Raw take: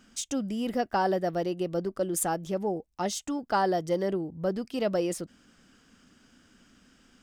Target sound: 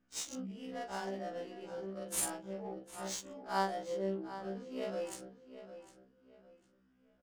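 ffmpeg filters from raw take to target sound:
-filter_complex "[0:a]afftfilt=real='re':imag='-im':win_size=4096:overlap=0.75,bandreject=f=50:t=h:w=6,bandreject=f=100:t=h:w=6,bandreject=f=150:t=h:w=6,bandreject=f=200:t=h:w=6,bandreject=f=250:t=h:w=6,bandreject=f=300:t=h:w=6,bandreject=f=350:t=h:w=6,bandreject=f=400:t=h:w=6,crystalizer=i=4:c=0,adynamicsmooth=sensitivity=5.5:basefreq=1200,asplit=2[s0][s1];[s1]adelay=754,lowpass=f=4700:p=1,volume=0.237,asplit=2[s2][s3];[s3]adelay=754,lowpass=f=4700:p=1,volume=0.3,asplit=2[s4][s5];[s5]adelay=754,lowpass=f=4700:p=1,volume=0.3[s6];[s0][s2][s4][s6]amix=inputs=4:normalize=0,afftfilt=real='re*1.73*eq(mod(b,3),0)':imag='im*1.73*eq(mod(b,3),0)':win_size=2048:overlap=0.75,volume=0.473"

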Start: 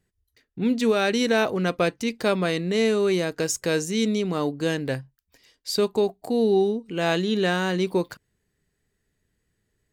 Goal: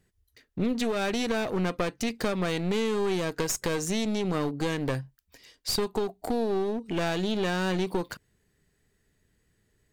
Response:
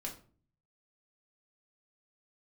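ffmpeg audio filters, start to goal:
-af "acompressor=threshold=0.0501:ratio=12,aeval=exprs='clip(val(0),-1,0.0211)':c=same,volume=1.58"

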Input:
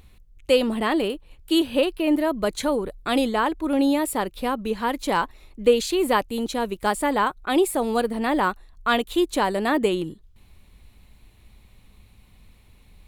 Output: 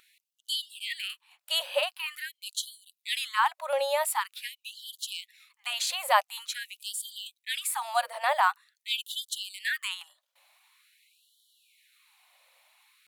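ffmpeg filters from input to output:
-af "atempo=1,afftfilt=real='re*gte(b*sr/1024,500*pow(3000/500,0.5+0.5*sin(2*PI*0.46*pts/sr)))':imag='im*gte(b*sr/1024,500*pow(3000/500,0.5+0.5*sin(2*PI*0.46*pts/sr)))':win_size=1024:overlap=0.75"

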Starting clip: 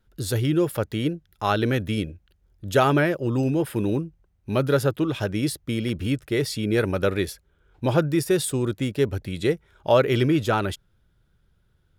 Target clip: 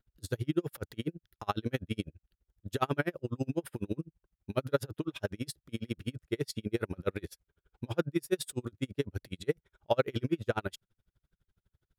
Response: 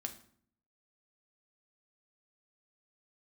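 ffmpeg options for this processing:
-af "aeval=exprs='val(0)*pow(10,-39*(0.5-0.5*cos(2*PI*12*n/s))/20)':c=same,volume=0.596"

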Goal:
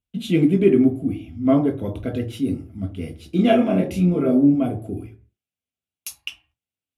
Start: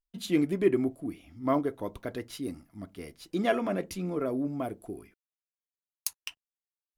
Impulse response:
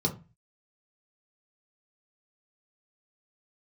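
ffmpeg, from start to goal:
-filter_complex "[0:a]asettb=1/sr,asplit=3[s0][s1][s2];[s0]atrim=end=3.364[s3];[s1]atrim=start=3.36:end=4.54,asetpts=PTS-STARTPTS,afade=t=in:d=0.004:c=qsin,afade=t=out:st=1.176:d=0.004:c=qsin,asplit=2[s4][s5];[s5]adelay=28,volume=0.708[s6];[s4][s6]amix=inputs=2:normalize=0,atrim=end_sample=52038[s7];[s2]atrim=start=4.536[s8];[s3][s7]acrossfade=d=0.004:c1=hsin:c2=qsin[s9];[s9][s8]acrossfade=d=0.004:c1=qsin:c2=hsin[s10];[1:a]atrim=start_sample=2205,atrim=end_sample=6615,asetrate=27342,aresample=44100[s11];[s10][s11]afir=irnorm=-1:irlink=0,volume=0.531"

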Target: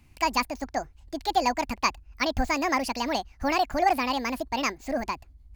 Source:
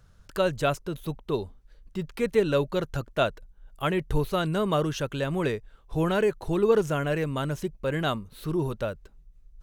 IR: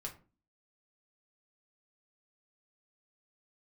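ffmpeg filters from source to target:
-af "equalizer=f=100:t=o:w=0.33:g=-11,equalizer=f=250:t=o:w=0.33:g=-6,equalizer=f=1250:t=o:w=0.33:g=3,equalizer=f=2500:t=o:w=0.33:g=6,asetrate=76440,aresample=44100"

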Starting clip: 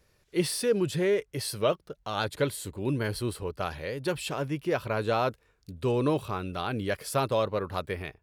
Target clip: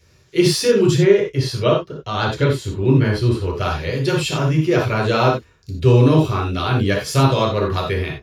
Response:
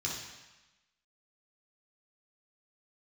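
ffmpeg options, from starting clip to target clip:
-filter_complex "[0:a]asettb=1/sr,asplit=3[s0][s1][s2];[s0]atrim=end=0.974[s3];[s1]atrim=start=0.97:end=3.43,asetpts=PTS-STARTPTS,afade=t=in:d=0.004:c=qsin,afade=t=out:st=2.456:d=0.004:c=qsin,highshelf=f=5000:g=-12[s4];[s2]atrim=start=3.426[s5];[s3][s4]acrossfade=d=0.004:c1=hsin:c2=qsin[s6];[s6][s5]acrossfade=d=0.004:c1=qsin:c2=hsin[s7];[1:a]atrim=start_sample=2205,afade=t=out:st=0.15:d=0.01,atrim=end_sample=7056[s8];[s7][s8]afir=irnorm=-1:irlink=0,volume=2.51"

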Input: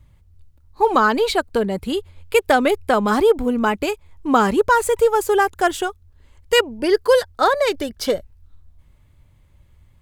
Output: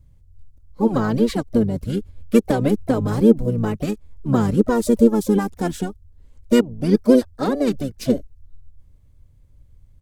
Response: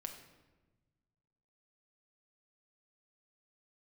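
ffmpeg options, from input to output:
-filter_complex "[0:a]equalizer=f=490:t=o:w=0.78:g=10.5,asplit=4[s0][s1][s2][s3];[s1]asetrate=22050,aresample=44100,atempo=2,volume=0.708[s4];[s2]asetrate=33038,aresample=44100,atempo=1.33484,volume=0.398[s5];[s3]asetrate=55563,aresample=44100,atempo=0.793701,volume=0.2[s6];[s0][s4][s5][s6]amix=inputs=4:normalize=0,bass=f=250:g=14,treble=f=4000:g=9,volume=0.188"

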